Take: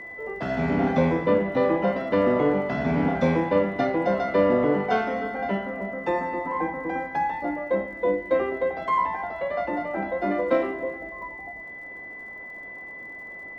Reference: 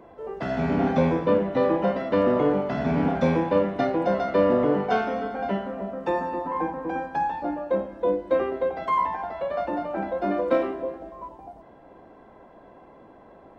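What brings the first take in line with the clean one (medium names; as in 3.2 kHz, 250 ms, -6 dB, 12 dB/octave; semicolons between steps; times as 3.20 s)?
de-click; band-stop 2 kHz, Q 30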